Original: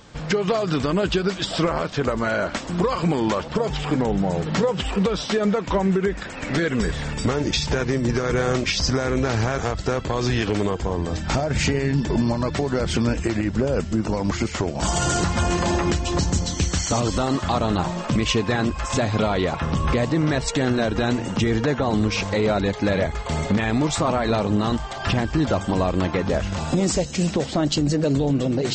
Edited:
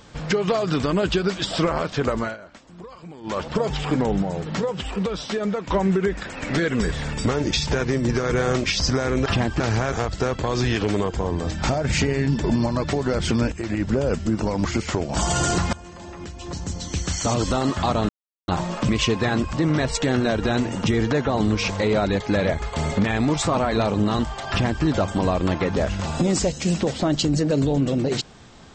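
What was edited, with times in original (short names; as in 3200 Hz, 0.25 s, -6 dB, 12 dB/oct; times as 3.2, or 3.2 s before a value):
2.19–3.41 dip -19 dB, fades 0.18 s
4.23–5.7 gain -4 dB
13.18–13.47 fade in, from -12 dB
15.39–17.02 fade in quadratic, from -20 dB
17.75 insert silence 0.39 s
18.8–20.06 cut
25.03–25.37 copy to 9.26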